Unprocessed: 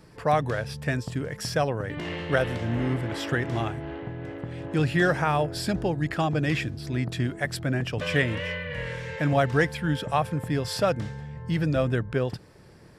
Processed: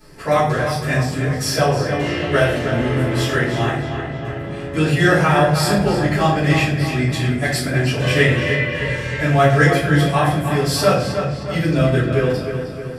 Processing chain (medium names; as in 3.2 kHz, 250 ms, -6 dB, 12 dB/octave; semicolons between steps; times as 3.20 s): treble shelf 4.8 kHz +10 dB; on a send: filtered feedback delay 311 ms, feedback 56%, low-pass 4.9 kHz, level -7.5 dB; on the sum: simulated room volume 97 m³, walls mixed, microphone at 3 m; trim -5 dB